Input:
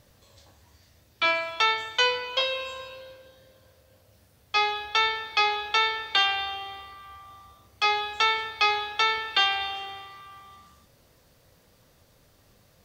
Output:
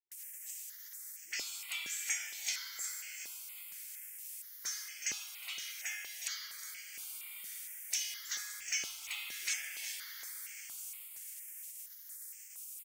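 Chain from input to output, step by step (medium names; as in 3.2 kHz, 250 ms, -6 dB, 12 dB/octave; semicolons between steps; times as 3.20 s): in parallel at +1.5 dB: compression, threshold -35 dBFS, peak gain reduction 16 dB; 5.11–6.82 s: on the sum: comb of notches 890 Hz; spectral gate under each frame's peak -20 dB weak; differentiator; phase dispersion highs, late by 117 ms, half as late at 350 Hz; on a send at -5 dB: reverberation RT60 2.3 s, pre-delay 5 ms; 8.59–9.17 s: on the sum: hysteresis with a dead band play -53.5 dBFS; graphic EQ 125/250/500/1000/2000/4000/8000 Hz -9/-11/-12/-8/+9/-11/+7 dB; feedback delay 364 ms, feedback 52%, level -11 dB; stepped phaser 4.3 Hz 220–3800 Hz; trim +10 dB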